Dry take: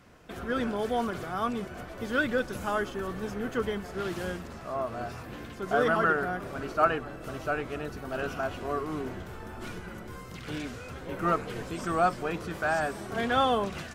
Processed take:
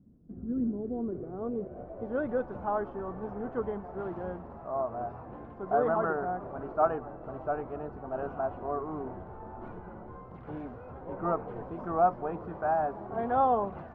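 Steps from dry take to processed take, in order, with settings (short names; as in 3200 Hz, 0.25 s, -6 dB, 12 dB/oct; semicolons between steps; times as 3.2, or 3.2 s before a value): low-pass sweep 230 Hz -> 860 Hz, 0.41–2.41; gain -4.5 dB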